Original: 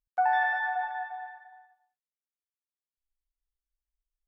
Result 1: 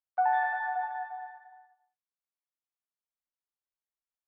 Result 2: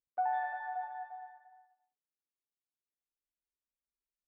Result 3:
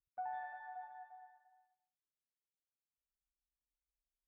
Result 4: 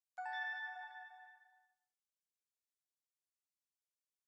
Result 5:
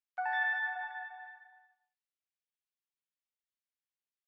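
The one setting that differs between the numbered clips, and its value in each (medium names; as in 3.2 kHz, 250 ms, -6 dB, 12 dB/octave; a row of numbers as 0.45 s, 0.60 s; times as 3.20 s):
band-pass filter, frequency: 940 Hz, 330 Hz, 110 Hz, 7.1 kHz, 2.6 kHz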